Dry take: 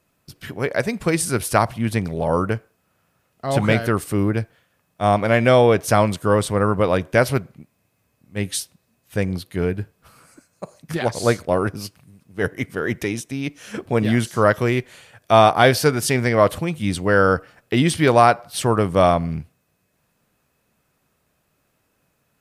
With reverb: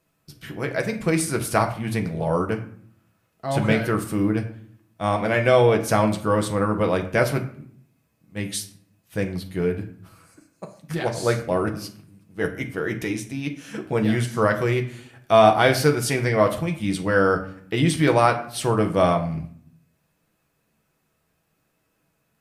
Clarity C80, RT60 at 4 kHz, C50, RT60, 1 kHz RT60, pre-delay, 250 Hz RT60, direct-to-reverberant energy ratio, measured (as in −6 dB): 15.0 dB, 0.40 s, 12.0 dB, 0.60 s, 0.55 s, 6 ms, 0.90 s, 3.5 dB